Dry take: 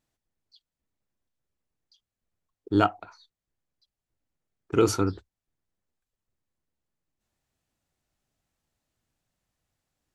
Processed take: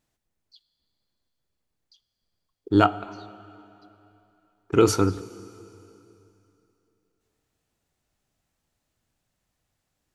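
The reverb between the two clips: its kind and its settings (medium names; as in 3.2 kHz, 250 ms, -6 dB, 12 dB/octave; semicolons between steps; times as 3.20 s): plate-style reverb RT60 3 s, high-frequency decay 0.95×, DRR 16 dB; trim +3.5 dB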